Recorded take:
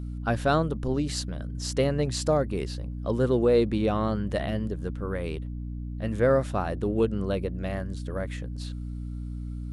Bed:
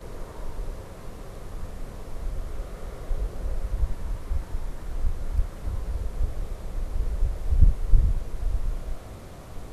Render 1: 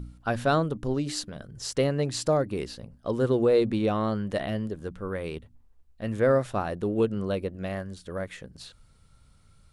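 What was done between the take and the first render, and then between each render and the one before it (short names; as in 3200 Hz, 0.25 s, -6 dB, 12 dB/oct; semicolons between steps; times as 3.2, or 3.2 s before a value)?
de-hum 60 Hz, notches 5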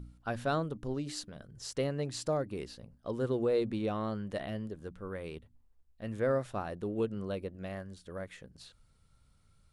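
gain -8 dB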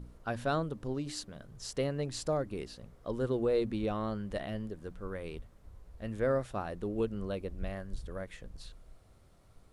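add bed -22.5 dB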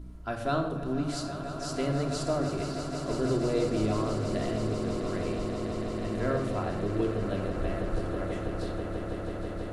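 on a send: swelling echo 0.163 s, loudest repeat 8, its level -12 dB; on the sum: shoebox room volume 2800 m³, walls furnished, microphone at 3 m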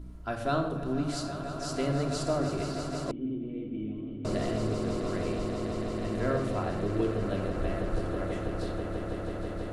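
3.11–4.25 vocal tract filter i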